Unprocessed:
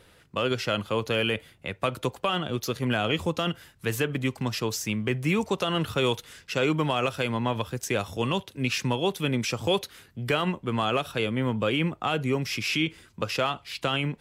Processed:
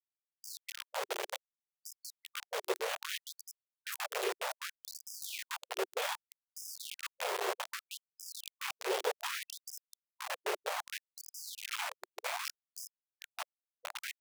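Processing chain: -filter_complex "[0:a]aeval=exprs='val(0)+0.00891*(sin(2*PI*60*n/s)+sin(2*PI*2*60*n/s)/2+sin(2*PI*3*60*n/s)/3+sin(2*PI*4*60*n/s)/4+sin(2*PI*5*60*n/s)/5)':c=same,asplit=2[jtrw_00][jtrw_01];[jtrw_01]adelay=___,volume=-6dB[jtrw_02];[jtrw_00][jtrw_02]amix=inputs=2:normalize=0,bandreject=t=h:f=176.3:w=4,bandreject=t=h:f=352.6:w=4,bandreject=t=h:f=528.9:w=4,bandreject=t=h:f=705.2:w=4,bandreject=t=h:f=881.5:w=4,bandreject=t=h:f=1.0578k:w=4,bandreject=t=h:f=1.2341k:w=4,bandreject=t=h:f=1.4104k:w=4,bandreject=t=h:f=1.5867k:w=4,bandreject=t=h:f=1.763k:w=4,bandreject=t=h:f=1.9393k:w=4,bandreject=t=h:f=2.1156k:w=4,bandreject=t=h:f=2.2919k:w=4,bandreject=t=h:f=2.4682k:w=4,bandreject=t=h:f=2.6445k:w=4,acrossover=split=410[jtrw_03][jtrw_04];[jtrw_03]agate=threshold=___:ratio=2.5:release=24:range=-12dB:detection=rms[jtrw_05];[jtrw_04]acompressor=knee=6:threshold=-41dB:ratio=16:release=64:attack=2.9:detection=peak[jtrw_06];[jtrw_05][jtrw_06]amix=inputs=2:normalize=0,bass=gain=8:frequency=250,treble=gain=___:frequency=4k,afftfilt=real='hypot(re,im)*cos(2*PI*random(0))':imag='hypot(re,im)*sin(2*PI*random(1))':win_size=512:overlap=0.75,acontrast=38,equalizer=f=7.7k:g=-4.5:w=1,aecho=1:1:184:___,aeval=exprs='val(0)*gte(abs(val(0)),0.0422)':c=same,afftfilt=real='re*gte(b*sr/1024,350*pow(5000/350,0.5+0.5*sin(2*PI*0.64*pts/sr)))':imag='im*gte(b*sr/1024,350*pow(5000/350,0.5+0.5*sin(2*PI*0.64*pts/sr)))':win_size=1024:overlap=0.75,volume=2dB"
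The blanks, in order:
16, -27dB, 5, 0.133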